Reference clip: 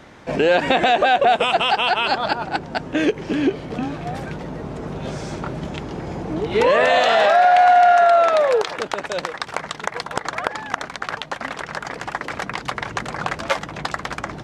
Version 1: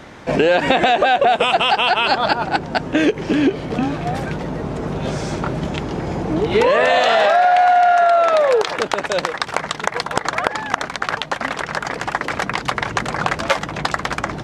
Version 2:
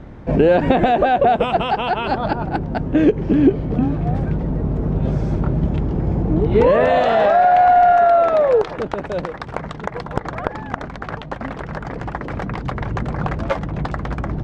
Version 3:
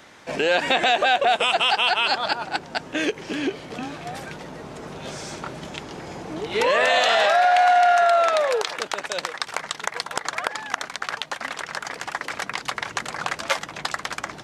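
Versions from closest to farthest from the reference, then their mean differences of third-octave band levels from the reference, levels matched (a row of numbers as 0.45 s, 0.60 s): 1, 3, 2; 2.5 dB, 4.0 dB, 6.5 dB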